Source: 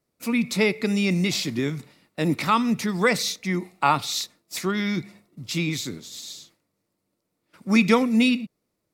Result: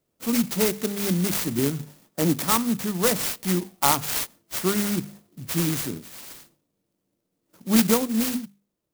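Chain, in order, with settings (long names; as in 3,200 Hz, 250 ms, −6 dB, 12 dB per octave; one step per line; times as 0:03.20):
0:05.98–0:07.72: parametric band 2,400 Hz −8 dB 2.9 octaves
speech leveller within 4 dB 0.5 s
mains-hum notches 50/100/150/200/250 Hz
converter with an unsteady clock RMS 0.13 ms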